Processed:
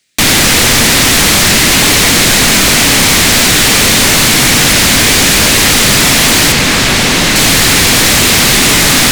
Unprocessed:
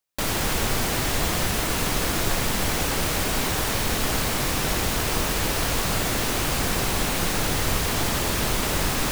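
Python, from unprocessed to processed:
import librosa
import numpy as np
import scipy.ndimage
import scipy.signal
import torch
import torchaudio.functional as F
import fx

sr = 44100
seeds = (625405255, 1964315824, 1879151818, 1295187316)

y = fx.graphic_eq_10(x, sr, hz=(125, 250, 1000, 2000, 4000, 8000, 16000), db=(5, 10, -11, 12, 8, 11, -11))
y = fx.fold_sine(y, sr, drive_db=14, ceiling_db=-4.5)
y = fx.high_shelf(y, sr, hz=8300.0, db=-10.5, at=(6.52, 7.36))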